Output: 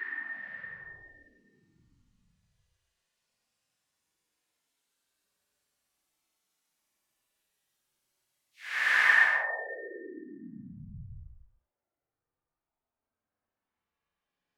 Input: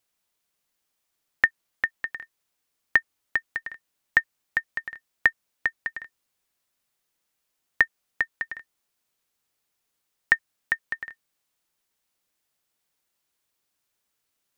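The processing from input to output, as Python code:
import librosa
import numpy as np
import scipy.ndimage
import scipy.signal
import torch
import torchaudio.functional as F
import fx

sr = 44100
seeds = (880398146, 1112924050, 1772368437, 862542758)

y = fx.dispersion(x, sr, late='lows', ms=109.0, hz=360.0)
y = fx.env_lowpass_down(y, sr, base_hz=970.0, full_db=-26.5)
y = fx.paulstretch(y, sr, seeds[0], factor=20.0, window_s=0.05, from_s=3.72)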